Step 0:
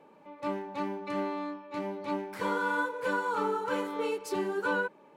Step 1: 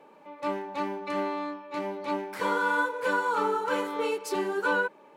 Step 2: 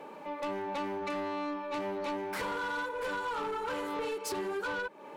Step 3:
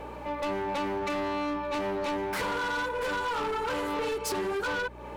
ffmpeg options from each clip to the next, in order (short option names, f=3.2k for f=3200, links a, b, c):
-af "equalizer=f=85:w=0.46:g=-10.5,volume=4.5dB"
-af "acompressor=threshold=-37dB:ratio=6,asoftclip=type=tanh:threshold=-38.5dB,volume=8dB"
-af "aeval=exprs='val(0)+0.00251*(sin(2*PI*60*n/s)+sin(2*PI*2*60*n/s)/2+sin(2*PI*3*60*n/s)/3+sin(2*PI*4*60*n/s)/4+sin(2*PI*5*60*n/s)/5)':c=same,asoftclip=type=hard:threshold=-33.5dB,volume=5.5dB"